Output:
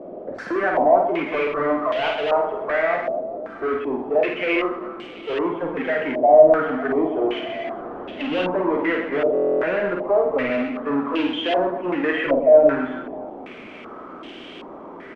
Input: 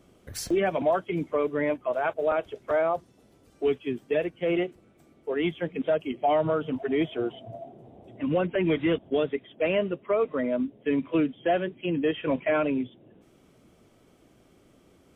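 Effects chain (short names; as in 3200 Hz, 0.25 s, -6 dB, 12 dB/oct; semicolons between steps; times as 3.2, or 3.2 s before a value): HPF 220 Hz 24 dB/oct; power-law curve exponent 0.5; reverse bouncing-ball echo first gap 50 ms, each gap 1.5×, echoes 5; on a send at -11.5 dB: reverb RT60 0.35 s, pre-delay 18 ms; on the sum: stuck buffer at 9.33, samples 1024, times 12; stepped low-pass 2.6 Hz 630–3000 Hz; gain -4.5 dB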